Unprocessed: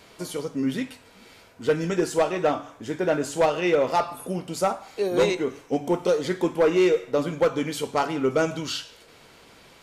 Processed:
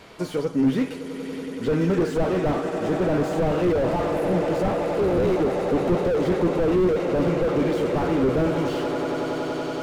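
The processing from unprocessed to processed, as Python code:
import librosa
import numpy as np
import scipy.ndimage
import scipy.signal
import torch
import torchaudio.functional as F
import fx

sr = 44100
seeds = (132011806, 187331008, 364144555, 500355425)

y = fx.high_shelf(x, sr, hz=4000.0, db=-9.5)
y = fx.echo_swell(y, sr, ms=94, loudest=8, wet_db=-17.5)
y = fx.slew_limit(y, sr, full_power_hz=25.0)
y = y * librosa.db_to_amplitude(6.0)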